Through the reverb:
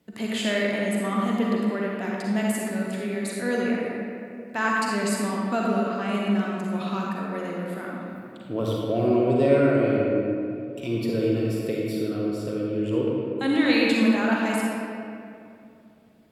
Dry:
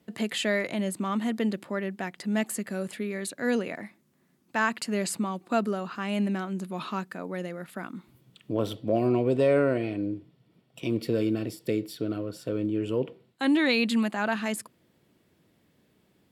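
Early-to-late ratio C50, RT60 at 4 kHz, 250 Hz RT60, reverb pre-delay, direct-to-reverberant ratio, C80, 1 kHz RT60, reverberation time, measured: −3.0 dB, 1.4 s, 3.1 s, 40 ms, −3.5 dB, −1.0 dB, 2.4 s, 2.7 s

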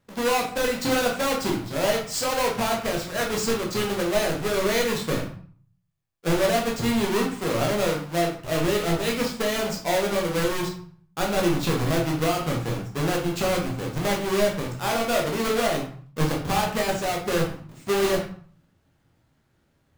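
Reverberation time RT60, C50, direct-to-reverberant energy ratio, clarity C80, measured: 0.50 s, 6.5 dB, −1.0 dB, 10.5 dB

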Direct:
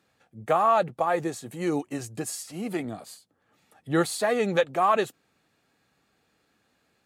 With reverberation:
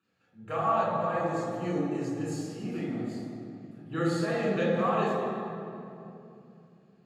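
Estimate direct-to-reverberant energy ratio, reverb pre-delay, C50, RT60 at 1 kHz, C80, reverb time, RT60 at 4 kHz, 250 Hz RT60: −6.0 dB, 3 ms, −1.5 dB, 2.5 s, 0.5 dB, 2.8 s, 1.7 s, 4.2 s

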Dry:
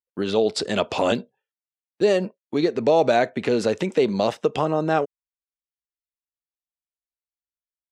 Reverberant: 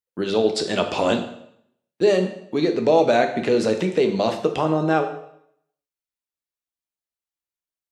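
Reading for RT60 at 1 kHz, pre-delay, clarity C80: 0.70 s, 5 ms, 11.5 dB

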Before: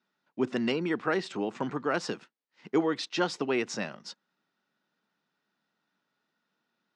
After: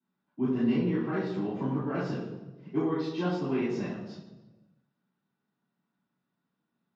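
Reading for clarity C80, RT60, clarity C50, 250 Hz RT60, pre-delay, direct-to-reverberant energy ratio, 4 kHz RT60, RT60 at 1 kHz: 4.0 dB, 1.2 s, 1.0 dB, 1.5 s, 3 ms, −11.5 dB, 0.85 s, 1.1 s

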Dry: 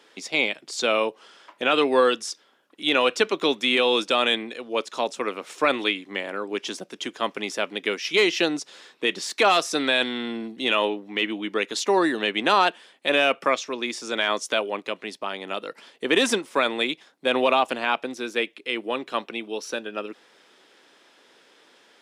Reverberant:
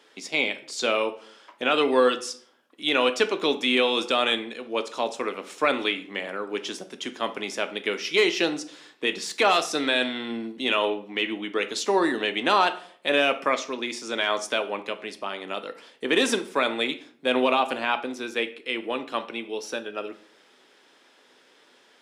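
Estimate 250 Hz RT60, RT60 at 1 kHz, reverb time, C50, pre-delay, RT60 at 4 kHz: 0.70 s, 0.50 s, 0.55 s, 14.0 dB, 5 ms, 0.40 s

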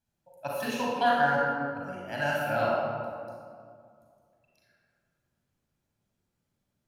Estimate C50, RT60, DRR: −2.5 dB, 2.2 s, −4.5 dB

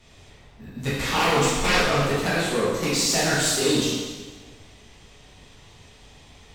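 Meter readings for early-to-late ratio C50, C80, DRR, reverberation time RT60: −0.5 dB, 1.5 dB, −9.5 dB, 1.4 s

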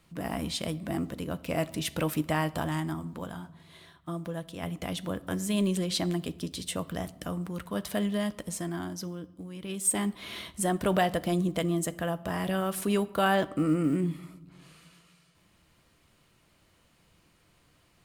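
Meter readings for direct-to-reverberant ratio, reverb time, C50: 12.0 dB, 1.0 s, 19.5 dB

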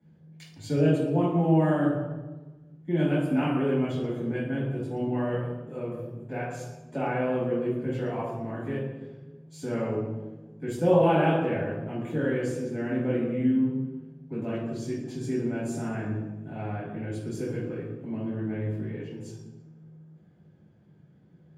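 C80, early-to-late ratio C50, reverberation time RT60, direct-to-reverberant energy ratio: 3.5 dB, −0.5 dB, 1.3 s, −9.5 dB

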